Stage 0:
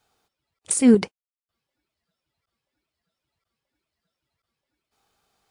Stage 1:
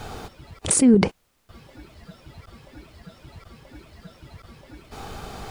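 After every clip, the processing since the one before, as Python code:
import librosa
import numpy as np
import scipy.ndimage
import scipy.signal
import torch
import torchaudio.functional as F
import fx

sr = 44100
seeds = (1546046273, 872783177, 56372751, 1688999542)

y = fx.tilt_eq(x, sr, slope=-2.5)
y = fx.env_flatten(y, sr, amount_pct=70)
y = y * 10.0 ** (-6.5 / 20.0)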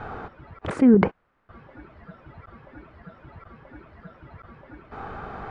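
y = fx.lowpass_res(x, sr, hz=1500.0, q=1.7)
y = fx.low_shelf(y, sr, hz=72.0, db=-5.5)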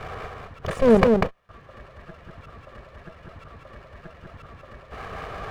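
y = fx.lower_of_two(x, sr, delay_ms=1.7)
y = y + 10.0 ** (-3.5 / 20.0) * np.pad(y, (int(194 * sr / 1000.0), 0))[:len(y)]
y = y * 10.0 ** (2.0 / 20.0)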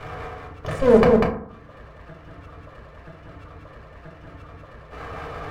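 y = fx.rev_fdn(x, sr, rt60_s=0.61, lf_ratio=1.2, hf_ratio=0.4, size_ms=20.0, drr_db=-0.5)
y = y * 10.0 ** (-2.5 / 20.0)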